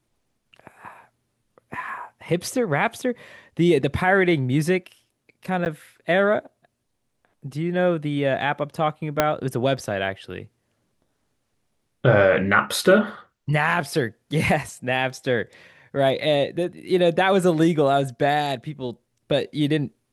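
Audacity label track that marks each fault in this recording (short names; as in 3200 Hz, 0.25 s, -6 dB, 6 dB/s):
5.650000	5.660000	gap 9.7 ms
9.200000	9.200000	pop -3 dBFS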